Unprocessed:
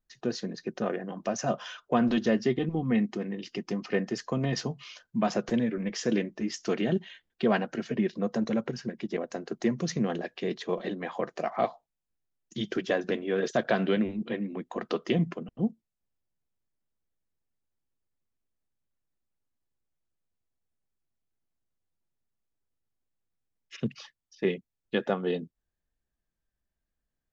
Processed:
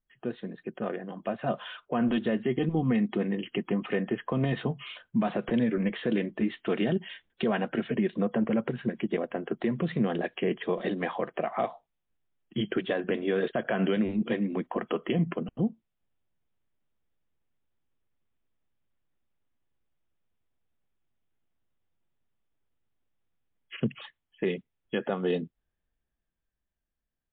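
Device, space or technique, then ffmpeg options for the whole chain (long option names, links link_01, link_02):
low-bitrate web radio: -af "dynaudnorm=framelen=310:gausssize=13:maxgain=8.5dB,alimiter=limit=-15dB:level=0:latency=1:release=142,volume=-2.5dB" -ar 8000 -c:a libmp3lame -b:a 40k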